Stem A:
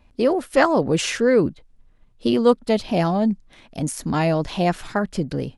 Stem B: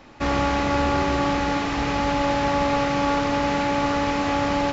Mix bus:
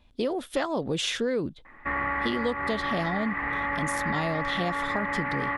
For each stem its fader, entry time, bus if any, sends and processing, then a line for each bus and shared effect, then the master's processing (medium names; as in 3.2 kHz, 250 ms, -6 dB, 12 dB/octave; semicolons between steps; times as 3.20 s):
-5.0 dB, 0.00 s, no send, peaking EQ 3.5 kHz +12.5 dB 0.32 oct
+1.5 dB, 1.65 s, no send, four-pole ladder low-pass 2 kHz, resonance 85%; peaking EQ 1.1 kHz +9.5 dB 0.44 oct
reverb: none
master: compression, threshold -24 dBFS, peak gain reduction 9.5 dB